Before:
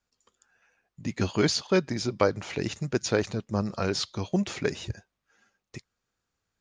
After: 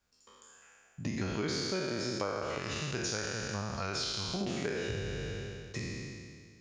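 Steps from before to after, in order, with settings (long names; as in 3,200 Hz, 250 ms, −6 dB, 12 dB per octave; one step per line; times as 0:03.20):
peak hold with a decay on every bin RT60 1.97 s
0:02.58–0:04.41: parametric band 330 Hz −9 dB 2.3 octaves
downward compressor 5 to 1, threshold −34 dBFS, peak gain reduction 17 dB
level +1 dB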